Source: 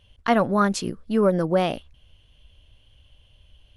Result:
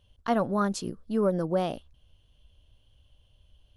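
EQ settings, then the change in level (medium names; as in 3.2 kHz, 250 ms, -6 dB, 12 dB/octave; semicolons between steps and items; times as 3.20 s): peaking EQ 2.2 kHz -8 dB 0.95 oct; -5.5 dB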